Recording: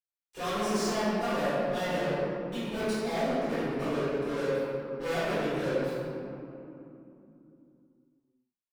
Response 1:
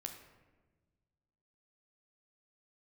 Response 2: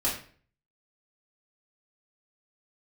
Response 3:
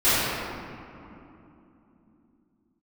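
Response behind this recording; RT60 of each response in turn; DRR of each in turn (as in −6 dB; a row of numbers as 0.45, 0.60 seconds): 3; 1.3, 0.45, 3.0 seconds; 3.5, −7.5, −18.5 decibels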